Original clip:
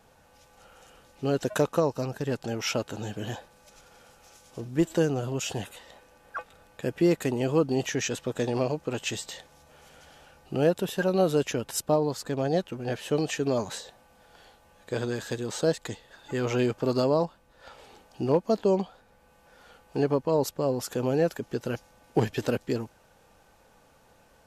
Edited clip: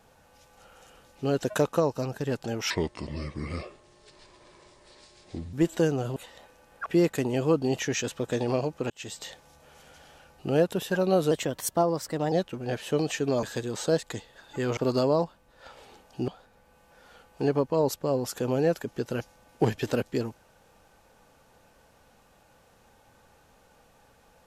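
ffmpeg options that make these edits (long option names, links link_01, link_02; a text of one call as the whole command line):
ffmpeg -i in.wav -filter_complex "[0:a]asplit=11[link_01][link_02][link_03][link_04][link_05][link_06][link_07][link_08][link_09][link_10][link_11];[link_01]atrim=end=2.704[link_12];[link_02]atrim=start=2.7:end=4.71,asetpts=PTS-STARTPTS,asetrate=31311,aresample=44100,atrim=end_sample=124846,asetpts=PTS-STARTPTS[link_13];[link_03]atrim=start=4.706:end=5.342[link_14];[link_04]atrim=start=5.688:end=6.392[link_15];[link_05]atrim=start=6.928:end=8.97,asetpts=PTS-STARTPTS,afade=type=out:start_time=2.038:duration=0.004:curve=hsin[link_16];[link_06]atrim=start=8.97:end=11.384,asetpts=PTS-STARTPTS,afade=type=in:duration=0.35[link_17];[link_07]atrim=start=11.38:end=12.51,asetpts=PTS-STARTPTS,asetrate=49392,aresample=44100[link_18];[link_08]atrim=start=12.506:end=13.622[link_19];[link_09]atrim=start=15.178:end=16.522[link_20];[link_10]atrim=start=16.778:end=18.292[link_21];[link_11]atrim=start=18.828[link_22];[link_12][link_13]acrossfade=duration=0.004:curve1=hsin:curve2=hsin[link_23];[link_23][link_14]acrossfade=duration=0.004:curve1=hsin:curve2=hsin[link_24];[link_24][link_15]acrossfade=duration=0.004:curve1=hsin:curve2=hsin[link_25];[link_16][link_17]concat=n=2:v=0:a=1[link_26];[link_25][link_26]acrossfade=duration=0.004:curve1=hsin:curve2=hsin[link_27];[link_27][link_18]acrossfade=duration=0.004:curve1=hsin:curve2=hsin[link_28];[link_28][link_19]acrossfade=duration=0.004:curve1=hsin:curve2=hsin[link_29];[link_29][link_20]acrossfade=duration=0.004:curve1=hsin:curve2=hsin[link_30];[link_30][link_21]acrossfade=duration=0.004:curve1=hsin:curve2=hsin[link_31];[link_31][link_22]acrossfade=duration=0.004:curve1=hsin:curve2=hsin" out.wav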